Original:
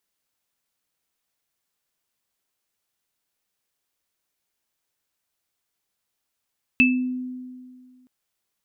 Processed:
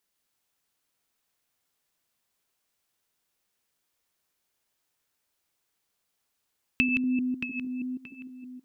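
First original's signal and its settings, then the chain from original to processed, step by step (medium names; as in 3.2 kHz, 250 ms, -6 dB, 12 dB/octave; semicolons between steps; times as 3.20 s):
sine partials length 1.27 s, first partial 253 Hz, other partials 2.63 kHz, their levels 5 dB, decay 2.00 s, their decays 0.33 s, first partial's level -15.5 dB
chunks repeated in reverse 153 ms, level -5 dB; compression, threshold -22 dBFS; tape echo 626 ms, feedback 32%, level -5.5 dB, low-pass 2.4 kHz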